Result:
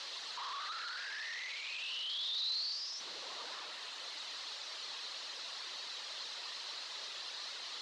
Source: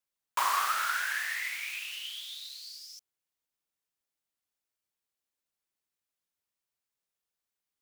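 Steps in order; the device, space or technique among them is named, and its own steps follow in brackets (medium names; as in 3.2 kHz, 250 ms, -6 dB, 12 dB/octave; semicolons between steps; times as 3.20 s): reverb removal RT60 1.2 s; home computer beeper (one-bit comparator; cabinet simulation 700–5000 Hz, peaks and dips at 770 Hz -5 dB, 1.5 kHz -5 dB, 2.3 kHz -6 dB, 4.1 kHz +7 dB); trim +1.5 dB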